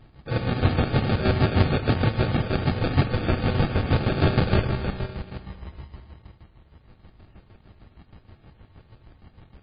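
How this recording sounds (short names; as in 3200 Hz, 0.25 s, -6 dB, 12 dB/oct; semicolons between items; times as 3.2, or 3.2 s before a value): aliases and images of a low sample rate 1000 Hz, jitter 0%; chopped level 6.4 Hz, depth 60%, duty 40%; MP3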